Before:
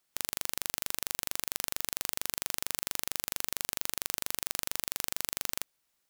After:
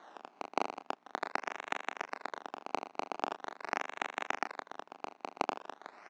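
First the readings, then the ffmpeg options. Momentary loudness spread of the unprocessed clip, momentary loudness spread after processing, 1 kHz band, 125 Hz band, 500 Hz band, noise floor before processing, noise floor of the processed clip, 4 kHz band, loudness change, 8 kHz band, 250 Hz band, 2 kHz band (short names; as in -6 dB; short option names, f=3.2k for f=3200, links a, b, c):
0 LU, 9 LU, +8.5 dB, under -10 dB, +6.5 dB, -78 dBFS, -69 dBFS, -12.0 dB, -6.5 dB, -22.5 dB, +3.5 dB, +0.5 dB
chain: -filter_complex "[0:a]tiltshelf=f=850:g=-10,acompressor=threshold=-39dB:ratio=6,aecho=1:1:244|488|732:0.376|0.0977|0.0254,asoftclip=type=tanh:threshold=-23.5dB,aeval=exprs='val(0)+0.000224*(sin(2*PI*60*n/s)+sin(2*PI*2*60*n/s)/2+sin(2*PI*3*60*n/s)/3+sin(2*PI*4*60*n/s)/4+sin(2*PI*5*60*n/s)/5)':c=same,acrusher=samples=17:mix=1:aa=0.000001:lfo=1:lforange=17:lforate=0.43,highpass=f=290:w=0.5412,highpass=f=290:w=1.3066,equalizer=f=340:t=q:w=4:g=-4,equalizer=f=510:t=q:w=4:g=-8,equalizer=f=780:t=q:w=4:g=5,equalizer=f=3.2k:t=q:w=4:g=-7,equalizer=f=4.8k:t=q:w=4:g=-7,lowpass=f=5.3k:w=0.5412,lowpass=f=5.3k:w=1.3066,asplit=2[a][b];[b]adelay=28,volume=-9dB[c];[a][c]amix=inputs=2:normalize=0,volume=13.5dB"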